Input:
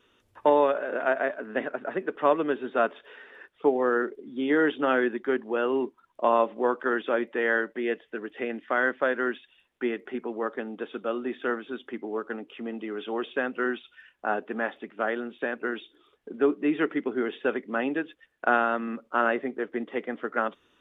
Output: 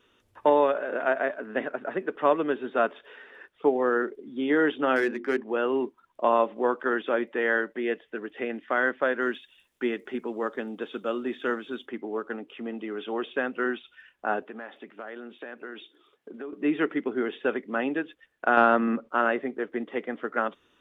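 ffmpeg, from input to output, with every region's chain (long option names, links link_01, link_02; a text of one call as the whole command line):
ffmpeg -i in.wav -filter_complex "[0:a]asettb=1/sr,asplit=3[link_01][link_02][link_03];[link_01]atrim=end=4.964[link_04];[link_02]atrim=start=4.96:end=5.48,asetpts=PTS-STARTPTS,afade=type=in:duration=0.004:curve=qsin,afade=type=out:start_time=0.516:duration=0.004:curve=qsin,equalizer=frequency=2300:width=2.6:gain=6,bandreject=frequency=50:width_type=h:width=6,bandreject=frequency=100:width_type=h:width=6,bandreject=frequency=150:width_type=h:width=6,bandreject=frequency=200:width_type=h:width=6,bandreject=frequency=250:width_type=h:width=6,bandreject=frequency=300:width_type=h:width=6,bandreject=frequency=350:width_type=h:width=6,bandreject=frequency=400:width_type=h:width=6,bandreject=frequency=450:width_type=h:width=6,bandreject=frequency=500:width_type=h:width=6,adynamicsmooth=sensitivity=7:basefreq=3000[link_05];[link_03]atrim=start=5.476[link_06];[link_04][link_05]acrossfade=duration=0.004:curve1=hsin:curve2=qsin[link_07];[link_07][link_06]acrossfade=duration=0.004:curve1=qsin:curve2=hsin,asettb=1/sr,asplit=3[link_08][link_09][link_10];[link_08]atrim=end=9.224[link_11];[link_09]atrim=start=9.22:end=11.86,asetpts=PTS-STARTPTS,afade=type=in:duration=0.004:curve=qsin,afade=type=out:start_time=2.636:duration=0.004:curve=qsin,bass=frequency=250:gain=2,treble=frequency=4000:gain=11,bandreject=frequency=740:width=16[link_12];[link_10]atrim=start=11.856[link_13];[link_11][link_12]acrossfade=duration=0.004:curve1=hsin:curve2=qsin[link_14];[link_14][link_13]acrossfade=duration=0.004:curve1=qsin:curve2=hsin,asettb=1/sr,asplit=3[link_15][link_16][link_17];[link_15]atrim=end=14.424[link_18];[link_16]atrim=start=14.42:end=16.53,asetpts=PTS-STARTPTS,afade=type=in:duration=0.004:curve=qsin,afade=type=out:start_time=2.106:duration=0.004:curve=qsin,acompressor=threshold=-36dB:ratio=4:attack=3.2:release=140:knee=1:detection=peak,highpass=120,lowshelf=frequency=160:gain=-5[link_19];[link_17]atrim=start=16.526[link_20];[link_18][link_19]acrossfade=duration=0.004:curve1=hsin:curve2=qsin[link_21];[link_21][link_20]acrossfade=duration=0.004:curve1=qsin:curve2=hsin,asettb=1/sr,asplit=3[link_22][link_23][link_24];[link_22]atrim=end=18.574[link_25];[link_23]atrim=start=18.57:end=19.09,asetpts=PTS-STARTPTS,afade=type=in:duration=0.004:curve=qsin,afade=type=out:start_time=0.516:duration=0.004:curve=qsin,lowpass=frequency=2000:poles=1,acontrast=88[link_26];[link_24]atrim=start=19.086[link_27];[link_25][link_26]acrossfade=duration=0.004:curve1=hsin:curve2=qsin[link_28];[link_28][link_27]acrossfade=duration=0.004:curve1=qsin:curve2=hsin" out.wav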